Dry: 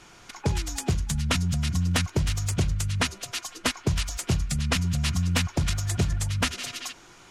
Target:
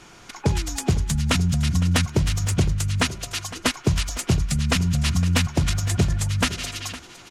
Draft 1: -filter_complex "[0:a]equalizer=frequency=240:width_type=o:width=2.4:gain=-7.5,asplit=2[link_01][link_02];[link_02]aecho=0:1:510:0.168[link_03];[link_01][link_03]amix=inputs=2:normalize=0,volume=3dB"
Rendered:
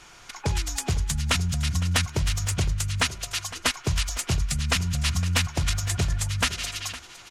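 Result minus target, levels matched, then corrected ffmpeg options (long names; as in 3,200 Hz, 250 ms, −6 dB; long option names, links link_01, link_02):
250 Hz band −6.0 dB
-filter_complex "[0:a]equalizer=frequency=240:width_type=o:width=2.4:gain=2.5,asplit=2[link_01][link_02];[link_02]aecho=0:1:510:0.168[link_03];[link_01][link_03]amix=inputs=2:normalize=0,volume=3dB"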